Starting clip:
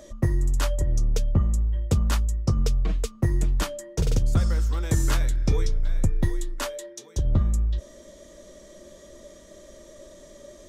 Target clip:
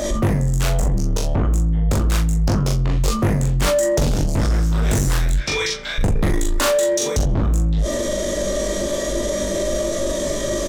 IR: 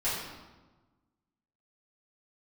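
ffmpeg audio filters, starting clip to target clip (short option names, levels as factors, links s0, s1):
-filter_complex "[0:a]asplit=3[s0][s1][s2];[s0]afade=t=out:st=5.32:d=0.02[s3];[s1]bandpass=f=2900:t=q:w=1.1:csg=0,afade=t=in:st=5.32:d=0.02,afade=t=out:st=5.98:d=0.02[s4];[s2]afade=t=in:st=5.98:d=0.02[s5];[s3][s4][s5]amix=inputs=3:normalize=0,asoftclip=type=tanh:threshold=0.0447,asplit=2[s6][s7];[s7]adelay=41,volume=0.596[s8];[s6][s8]amix=inputs=2:normalize=0,asplit=2[s9][s10];[s10]aecho=0:1:20|41:0.631|0.237[s11];[s9][s11]amix=inputs=2:normalize=0,acontrast=37,aeval=exprs='0.251*sin(PI/2*2.24*val(0)/0.251)':c=same,alimiter=limit=0.106:level=0:latency=1:release=16,asplit=2[s12][s13];[s13]adelay=87,lowpass=f=3300:p=1,volume=0.112,asplit=2[s14][s15];[s15]adelay=87,lowpass=f=3300:p=1,volume=0.46,asplit=2[s16][s17];[s17]adelay=87,lowpass=f=3300:p=1,volume=0.46,asplit=2[s18][s19];[s19]adelay=87,lowpass=f=3300:p=1,volume=0.46[s20];[s14][s16][s18][s20]amix=inputs=4:normalize=0[s21];[s12][s21]amix=inputs=2:normalize=0,volume=2"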